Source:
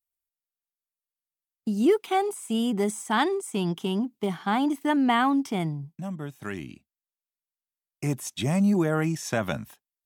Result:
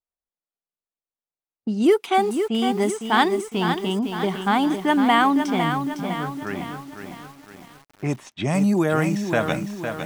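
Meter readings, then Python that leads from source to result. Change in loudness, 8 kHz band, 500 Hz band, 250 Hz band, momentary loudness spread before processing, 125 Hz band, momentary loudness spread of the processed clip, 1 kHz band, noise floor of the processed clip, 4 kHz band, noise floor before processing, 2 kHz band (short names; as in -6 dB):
+4.5 dB, -0.5 dB, +5.0 dB, +3.5 dB, 13 LU, +2.5 dB, 13 LU, +6.5 dB, under -85 dBFS, +6.0 dB, under -85 dBFS, +6.5 dB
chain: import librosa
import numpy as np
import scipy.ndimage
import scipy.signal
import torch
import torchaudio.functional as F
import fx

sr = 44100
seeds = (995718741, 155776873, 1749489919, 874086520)

y = fx.low_shelf(x, sr, hz=270.0, db=-6.0)
y = fx.env_lowpass(y, sr, base_hz=860.0, full_db=-22.0)
y = fx.echo_crushed(y, sr, ms=507, feedback_pct=55, bits=8, wet_db=-7)
y = y * librosa.db_to_amplitude(6.0)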